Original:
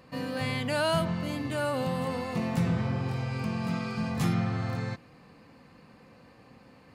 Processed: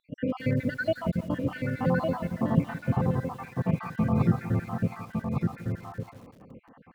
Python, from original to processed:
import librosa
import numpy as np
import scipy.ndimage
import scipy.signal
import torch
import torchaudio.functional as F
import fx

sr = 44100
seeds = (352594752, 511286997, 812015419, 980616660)

p1 = fx.spec_dropout(x, sr, seeds[0], share_pct=72)
p2 = scipy.signal.sosfilt(scipy.signal.butter(2, 1400.0, 'lowpass', fs=sr, output='sos'), p1)
p3 = fx.rider(p2, sr, range_db=10, speed_s=2.0)
p4 = p2 + (p3 * 10.0 ** (3.0 / 20.0))
p5 = p4 + 10.0 ** (-4.5 / 20.0) * np.pad(p4, (int(1157 * sr / 1000.0), 0))[:len(p4)]
p6 = fx.echo_crushed(p5, sr, ms=170, feedback_pct=55, bits=7, wet_db=-14.5)
y = p6 * 10.0 ** (-1.0 / 20.0)